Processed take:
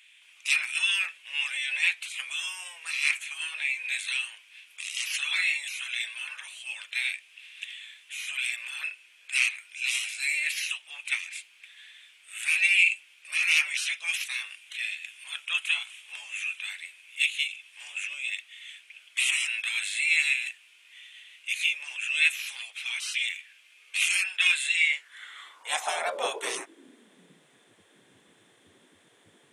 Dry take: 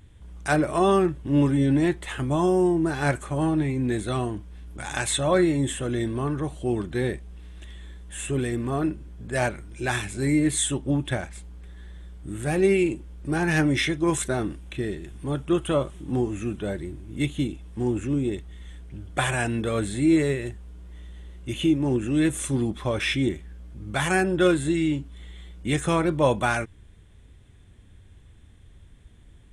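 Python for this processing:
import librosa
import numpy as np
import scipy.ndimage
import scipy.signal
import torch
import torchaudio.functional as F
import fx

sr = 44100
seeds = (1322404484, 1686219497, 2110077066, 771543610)

y = fx.spec_gate(x, sr, threshold_db=-20, keep='weak')
y = fx.filter_sweep_highpass(y, sr, from_hz=2500.0, to_hz=93.0, start_s=24.74, end_s=27.86, q=6.2)
y = F.gain(torch.from_numpy(y), 4.5).numpy()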